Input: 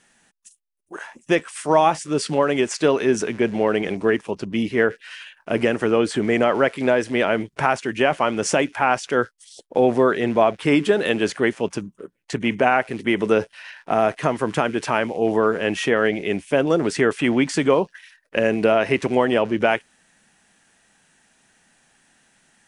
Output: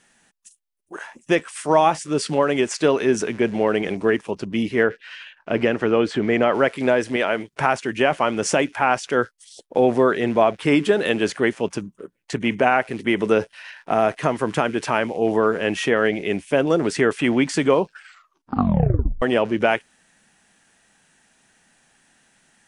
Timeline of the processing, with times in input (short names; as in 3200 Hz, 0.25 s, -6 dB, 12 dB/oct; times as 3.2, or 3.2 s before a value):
4.83–6.53 LPF 4800 Hz
7.16–7.6 low shelf 270 Hz -9.5 dB
17.82 tape stop 1.40 s